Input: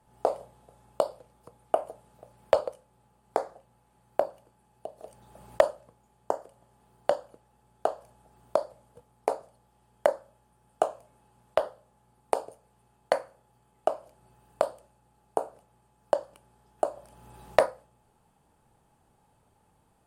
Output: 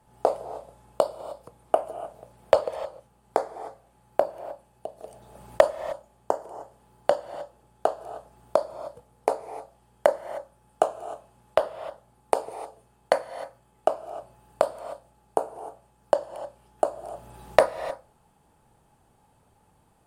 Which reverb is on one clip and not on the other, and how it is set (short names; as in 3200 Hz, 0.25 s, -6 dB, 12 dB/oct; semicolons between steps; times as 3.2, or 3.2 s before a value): non-linear reverb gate 0.33 s rising, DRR 12 dB; gain +3.5 dB